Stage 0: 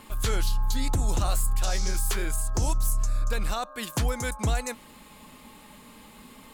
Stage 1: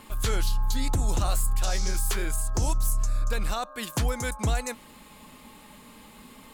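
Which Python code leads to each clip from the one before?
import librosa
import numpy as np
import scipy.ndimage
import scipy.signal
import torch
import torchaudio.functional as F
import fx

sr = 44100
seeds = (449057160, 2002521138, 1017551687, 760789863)

y = x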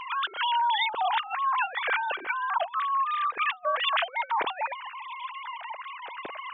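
y = fx.sine_speech(x, sr)
y = fx.over_compress(y, sr, threshold_db=-29.0, ratio=-0.5)
y = F.gain(torch.from_numpy(y), 1.0).numpy()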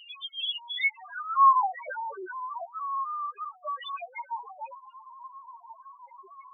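y = fx.filter_sweep_highpass(x, sr, from_hz=3100.0, to_hz=76.0, start_s=0.63, end_s=3.43, q=5.7)
y = fx.spec_topn(y, sr, count=1)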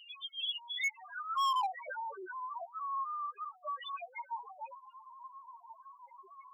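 y = fx.low_shelf(x, sr, hz=340.0, db=-4.0)
y = np.clip(y, -10.0 ** (-23.5 / 20.0), 10.0 ** (-23.5 / 20.0))
y = F.gain(torch.from_numpy(y), -5.0).numpy()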